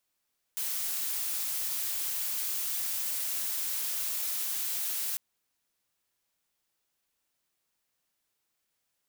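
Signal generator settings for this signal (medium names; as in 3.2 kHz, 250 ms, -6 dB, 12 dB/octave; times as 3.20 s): noise blue, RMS -32.5 dBFS 4.60 s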